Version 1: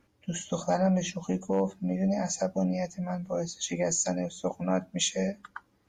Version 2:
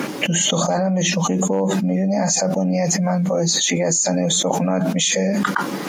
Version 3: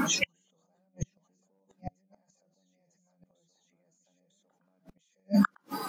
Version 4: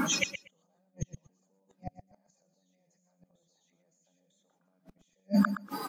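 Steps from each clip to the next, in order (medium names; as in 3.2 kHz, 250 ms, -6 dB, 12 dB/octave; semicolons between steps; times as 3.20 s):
elliptic high-pass 150 Hz; level flattener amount 100%; trim +4.5 dB
reverse echo 951 ms -6 dB; inverted gate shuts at -10 dBFS, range -38 dB; spectral noise reduction 16 dB
feedback delay 119 ms, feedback 16%, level -11 dB; trim -1.5 dB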